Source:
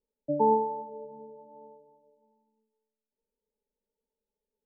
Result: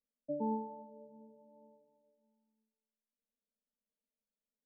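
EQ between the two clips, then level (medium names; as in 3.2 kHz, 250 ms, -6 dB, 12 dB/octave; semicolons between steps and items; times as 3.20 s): rippled Chebyshev low-pass 910 Hz, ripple 9 dB; static phaser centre 550 Hz, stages 8; -3.5 dB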